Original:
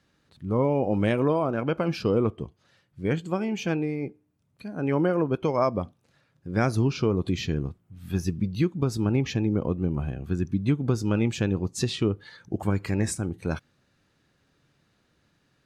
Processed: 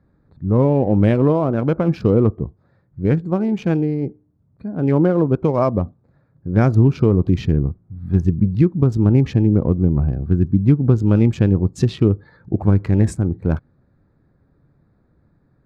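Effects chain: Wiener smoothing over 15 samples; tilt -2.5 dB/oct; gain +4 dB

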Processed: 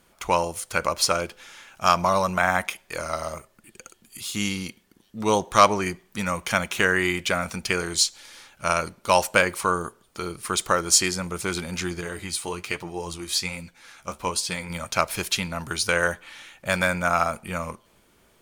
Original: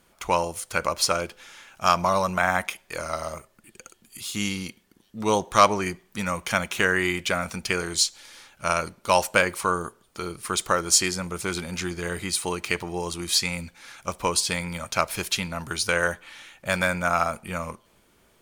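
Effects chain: 12.01–14.7 flange 1.2 Hz, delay 5.6 ms, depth 9.7 ms, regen +45%; gain +1 dB

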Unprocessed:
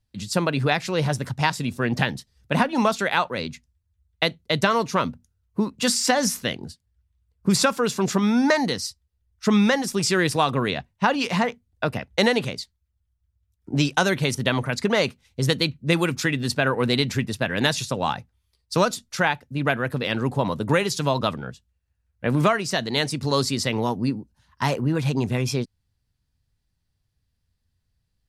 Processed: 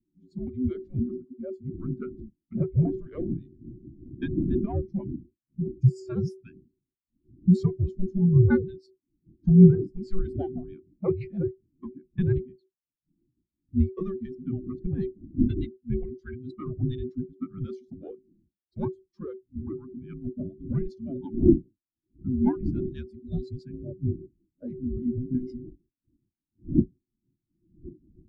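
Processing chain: half-wave gain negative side -12 dB; wind noise 380 Hz -33 dBFS; spectral gain 5.77–6.06, 520–4900 Hz -12 dB; frequency shift -380 Hz; rotary speaker horn 6.3 Hz; spectral expander 2.5:1; gain +6 dB

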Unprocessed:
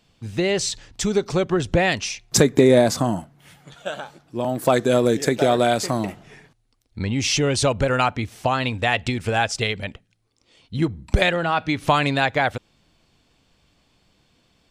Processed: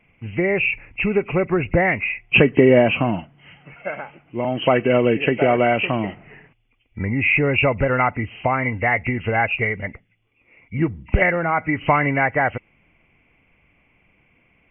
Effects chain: nonlinear frequency compression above 1900 Hz 4:1; gain +1 dB

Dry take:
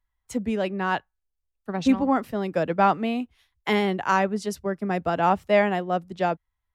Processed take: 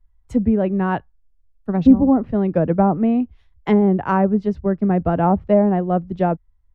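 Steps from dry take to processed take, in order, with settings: tilt -4 dB/oct; treble ducked by the level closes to 760 Hz, closed at -11.5 dBFS; gain +1.5 dB

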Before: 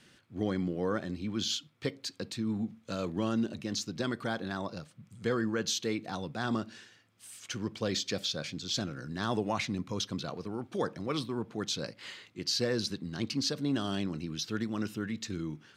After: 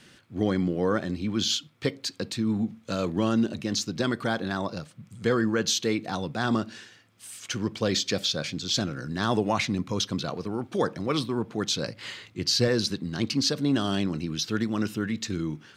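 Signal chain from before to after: 11.87–12.68 bell 98 Hz +8 dB 1 oct; gain +6.5 dB

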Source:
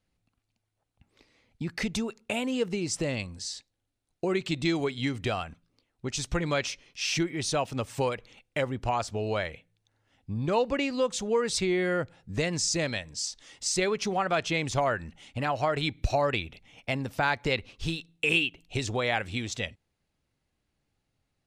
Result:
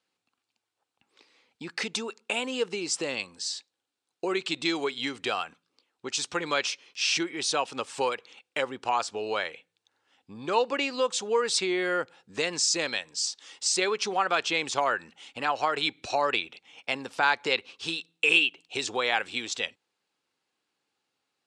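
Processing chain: speaker cabinet 470–8800 Hz, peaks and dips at 630 Hz -9 dB, 2000 Hz -5 dB, 6200 Hz -3 dB; gain +5 dB

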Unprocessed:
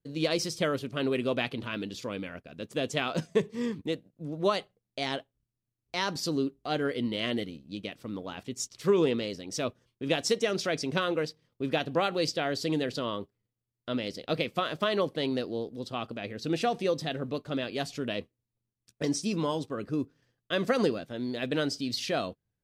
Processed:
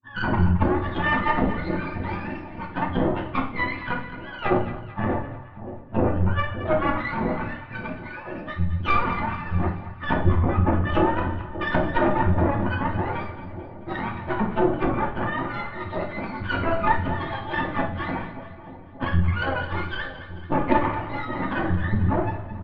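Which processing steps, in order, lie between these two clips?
spectrum mirrored in octaves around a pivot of 690 Hz; treble ducked by the level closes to 930 Hz, closed at -25.5 dBFS; comb 3.4 ms, depth 97%; low-pass opened by the level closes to 1100 Hz, open at -28.5 dBFS; added harmonics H 6 -13 dB, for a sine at -12 dBFS; Gaussian blur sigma 2.4 samples; split-band echo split 800 Hz, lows 0.581 s, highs 0.219 s, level -12.5 dB; reverb RT60 0.60 s, pre-delay 5 ms, DRR 1 dB; gain +3.5 dB

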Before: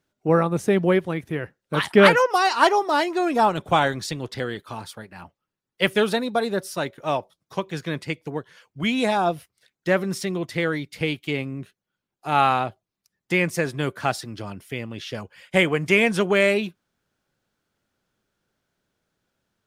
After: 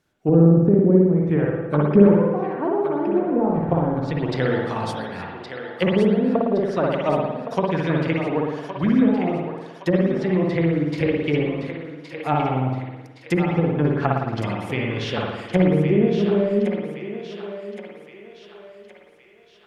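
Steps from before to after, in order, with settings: treble ducked by the level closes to 320 Hz, closed at -19 dBFS; thinning echo 1.117 s, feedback 51%, high-pass 640 Hz, level -7 dB; spring tank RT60 1.1 s, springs 54 ms, chirp 70 ms, DRR -1.5 dB; gain +4 dB

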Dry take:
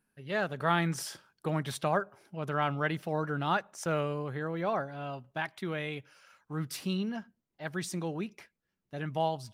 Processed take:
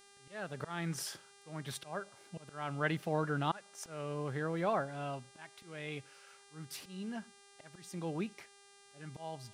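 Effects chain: auto swell 0.404 s; buzz 400 Hz, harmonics 26, -60 dBFS -2 dB/oct; gain -1.5 dB

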